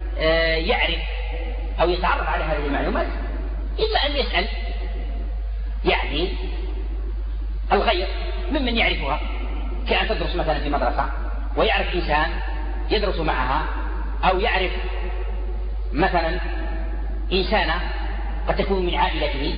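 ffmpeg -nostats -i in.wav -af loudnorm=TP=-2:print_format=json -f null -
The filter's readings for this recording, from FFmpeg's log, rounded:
"input_i" : "-23.4",
"input_tp" : "-4.5",
"input_lra" : "1.4",
"input_thresh" : "-33.4",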